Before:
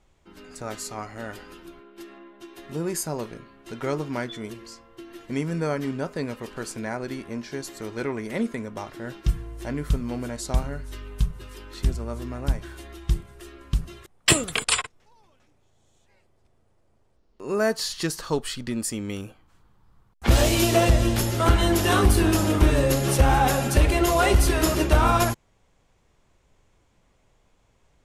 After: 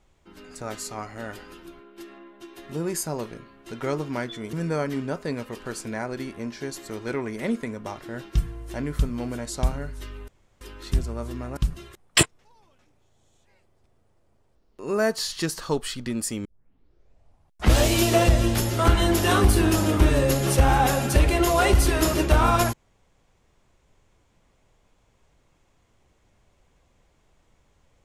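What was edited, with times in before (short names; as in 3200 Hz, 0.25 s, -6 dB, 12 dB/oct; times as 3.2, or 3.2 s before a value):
4.53–5.44 cut
11.19–11.52 room tone
12.48–13.68 cut
14.34–14.84 cut
19.06 tape start 1.32 s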